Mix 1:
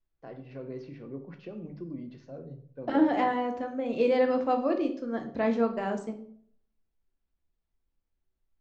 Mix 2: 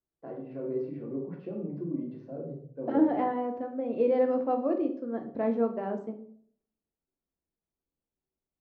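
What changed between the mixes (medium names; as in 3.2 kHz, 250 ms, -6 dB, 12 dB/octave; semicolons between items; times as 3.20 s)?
first voice: send +11.5 dB; master: add band-pass filter 380 Hz, Q 0.63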